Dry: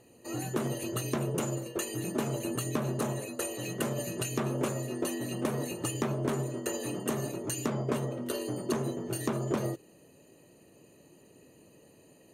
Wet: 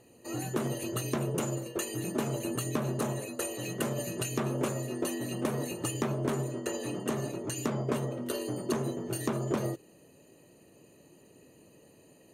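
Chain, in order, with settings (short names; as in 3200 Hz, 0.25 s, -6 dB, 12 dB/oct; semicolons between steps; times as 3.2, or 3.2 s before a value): 6.54–7.56 high shelf 11000 Hz -11.5 dB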